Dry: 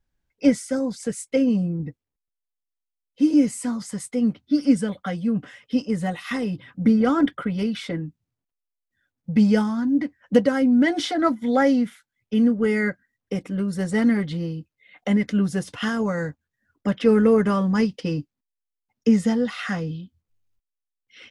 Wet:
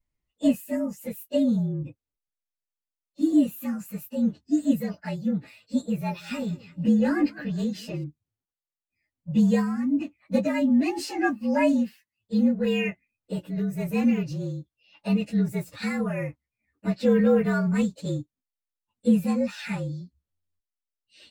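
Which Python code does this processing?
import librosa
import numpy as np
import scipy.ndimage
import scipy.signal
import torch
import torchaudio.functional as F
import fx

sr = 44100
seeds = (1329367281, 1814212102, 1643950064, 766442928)

y = fx.partial_stretch(x, sr, pct=113)
y = fx.echo_warbled(y, sr, ms=185, feedback_pct=32, rate_hz=2.8, cents=91, wet_db=-21.5, at=(5.92, 8.04))
y = F.gain(torch.from_numpy(y), -2.0).numpy()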